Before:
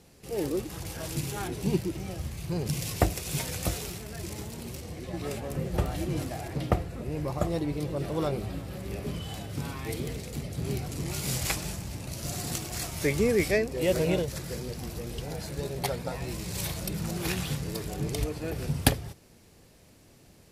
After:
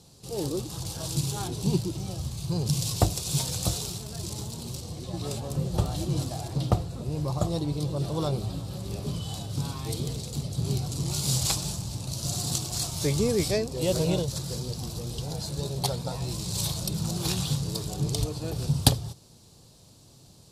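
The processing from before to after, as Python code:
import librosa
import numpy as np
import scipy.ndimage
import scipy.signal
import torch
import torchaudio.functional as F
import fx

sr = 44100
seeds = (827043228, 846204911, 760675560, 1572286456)

y = fx.graphic_eq(x, sr, hz=(125, 1000, 2000, 4000, 8000), db=(9, 6, -12, 11, 7))
y = y * 10.0 ** (-2.5 / 20.0)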